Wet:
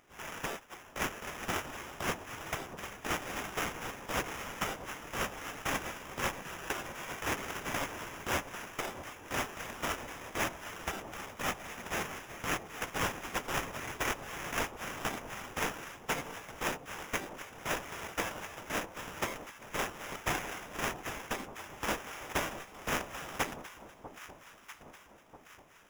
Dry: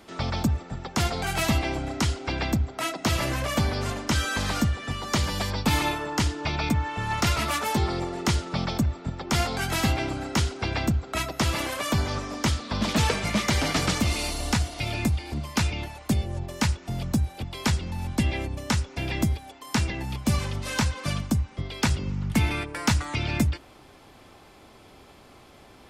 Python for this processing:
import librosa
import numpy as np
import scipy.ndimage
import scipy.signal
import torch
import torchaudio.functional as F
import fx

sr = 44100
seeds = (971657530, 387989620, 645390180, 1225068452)

y = fx.spec_gate(x, sr, threshold_db=-30, keep='weak')
y = fx.sample_hold(y, sr, seeds[0], rate_hz=4300.0, jitter_pct=0)
y = fx.echo_alternate(y, sr, ms=645, hz=1000.0, feedback_pct=67, wet_db=-11)
y = F.gain(torch.from_numpy(y), 7.0).numpy()